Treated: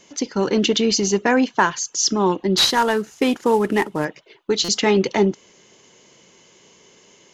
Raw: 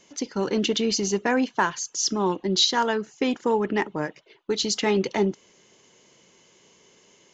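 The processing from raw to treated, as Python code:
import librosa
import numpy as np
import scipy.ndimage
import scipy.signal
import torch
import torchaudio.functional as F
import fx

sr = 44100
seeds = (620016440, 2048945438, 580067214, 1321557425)

y = fx.cvsd(x, sr, bps=64000, at=(2.57, 4.05))
y = fx.buffer_glitch(y, sr, at_s=(4.64,), block=256, repeats=7)
y = y * 10.0 ** (5.5 / 20.0)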